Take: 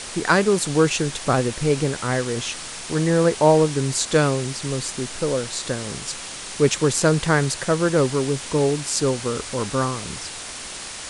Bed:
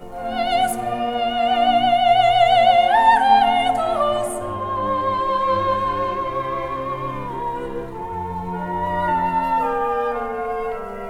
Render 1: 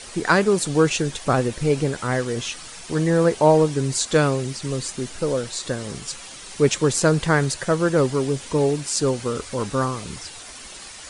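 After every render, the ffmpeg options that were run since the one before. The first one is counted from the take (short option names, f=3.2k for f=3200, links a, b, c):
-af "afftdn=nr=9:nf=-35"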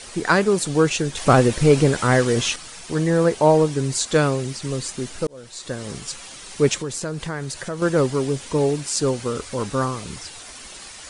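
-filter_complex "[0:a]asettb=1/sr,asplit=3[a][b][c];[a]atrim=end=1.174[d];[b]atrim=start=1.17:end=2.56,asetpts=PTS-STARTPTS,afade=t=in:d=0.004:c=qsin,afade=t=out:st=1.386:d=0.004:c=qsin,acontrast=63[e];[c]atrim=start=2.556[f];[d][e]acrossfade=d=0.004:c1=hsin:c2=qsin[g];[g][f]acrossfade=d=0.004:c1=qsin:c2=hsin,asettb=1/sr,asplit=3[h][i][j];[h]atrim=end=6.764[k];[i]atrim=start=6.76:end=7.82,asetpts=PTS-STARTPTS,afade=t=in:d=0.004:c=qsin,afade=t=out:st=1.056:d=0.004:c=qsin,acompressor=threshold=-27dB:ratio=3:attack=3.2:release=140:knee=1:detection=peak[l];[j]atrim=start=7.816[m];[k][l]acrossfade=d=0.004:c1=hsin:c2=qsin[n];[n][m]acrossfade=d=0.004:c1=qsin:c2=hsin,asplit=2[o][p];[o]atrim=end=5.27,asetpts=PTS-STARTPTS,afade=t=out:st=5.266:d=0.004:c=hsin[q];[p]atrim=start=5.27,asetpts=PTS-STARTPTS,afade=t=in:d=0.63[r];[q][r]concat=n=2:v=0:a=1"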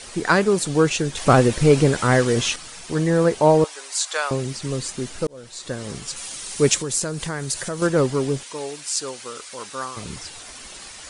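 -filter_complex "[0:a]asettb=1/sr,asplit=3[a][b][c];[a]atrim=end=3.644[d];[b]atrim=start=3.64:end=4.31,asetpts=PTS-STARTPTS,afade=t=in:d=0.004:c=qsin,afade=t=out:st=0.666:d=0.004:c=qsin,highpass=f=700:w=0.5412,highpass=f=700:w=1.3066[e];[c]atrim=start=4.306[f];[d][e]acrossfade=d=0.004:c1=hsin:c2=qsin[g];[g][f]acrossfade=d=0.004:c1=qsin:c2=hsin,asettb=1/sr,asplit=3[h][i][j];[h]atrim=end=6.164[k];[i]atrim=start=6.16:end=7.87,asetpts=PTS-STARTPTS,afade=t=in:d=0.004:c=qsin,afade=t=out:st=1.706:d=0.004:c=qsin,highshelf=f=5.7k:g=11.5[l];[j]atrim=start=7.866[m];[k][l]acrossfade=d=0.004:c1=hsin:c2=qsin[n];[n][m]acrossfade=d=0.004:c1=qsin:c2=hsin,asettb=1/sr,asplit=3[o][p][q];[o]atrim=end=8.434[r];[p]atrim=start=8.43:end=9.97,asetpts=PTS-STARTPTS,afade=t=in:d=0.004:c=qsin,afade=t=out:st=1.536:d=0.004:c=qsin,highpass=f=1.5k:p=1[s];[q]atrim=start=9.966[t];[r][s]acrossfade=d=0.004:c1=hsin:c2=qsin[u];[u][t]acrossfade=d=0.004:c1=qsin:c2=hsin"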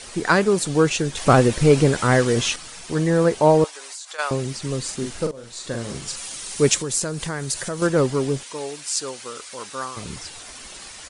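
-filter_complex "[0:a]asplit=3[a][b][c];[a]afade=t=out:st=3.7:d=0.02[d];[b]acompressor=threshold=-33dB:ratio=8:attack=3.2:release=140:knee=1:detection=peak,afade=t=in:st=3.7:d=0.02,afade=t=out:st=4.18:d=0.02[e];[c]afade=t=in:st=4.18:d=0.02[f];[d][e][f]amix=inputs=3:normalize=0,asplit=3[g][h][i];[g]afade=t=out:st=4.87:d=0.02[j];[h]asplit=2[k][l];[l]adelay=43,volume=-5.5dB[m];[k][m]amix=inputs=2:normalize=0,afade=t=in:st=4.87:d=0.02,afade=t=out:st=6.15:d=0.02[n];[i]afade=t=in:st=6.15:d=0.02[o];[j][n][o]amix=inputs=3:normalize=0"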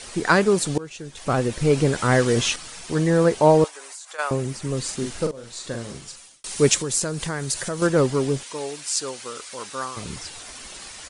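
-filter_complex "[0:a]asettb=1/sr,asplit=3[a][b][c];[a]atrim=end=3.684[d];[b]atrim=start=3.68:end=4.77,asetpts=PTS-STARTPTS,afade=t=in:d=0.004:c=qsin,afade=t=out:st=1.086:d=0.004:c=qsin,equalizer=f=4.2k:t=o:w=1.4:g=-6.5[e];[c]atrim=start=4.766[f];[d][e]acrossfade=d=0.004:c1=hsin:c2=qsin[g];[g][f]acrossfade=d=0.004:c1=qsin:c2=hsin,asplit=3[h][i][j];[h]atrim=end=0.78,asetpts=PTS-STARTPTS,afade=t=out:st=0.776:d=0.004:c=hsin:silence=0.0794328[k];[i]atrim=start=0.78:end=6.44,asetpts=PTS-STARTPTS,afade=t=in:d=1.58:silence=0.0794328,afade=t=out:st=4.75:d=0.91[l];[j]atrim=start=6.44,asetpts=PTS-STARTPTS,afade=t=in:d=0.004:c=hsin[m];[k][l][m]concat=n=3:v=0:a=1"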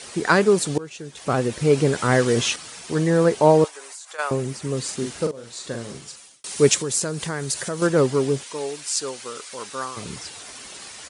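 -af "highpass=93,equalizer=f=420:w=7.2:g=3"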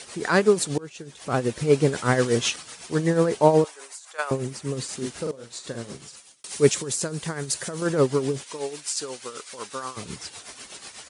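-af "tremolo=f=8.1:d=0.62"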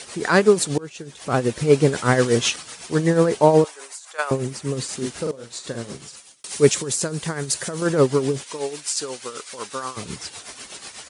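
-af "volume=3.5dB,alimiter=limit=-2dB:level=0:latency=1"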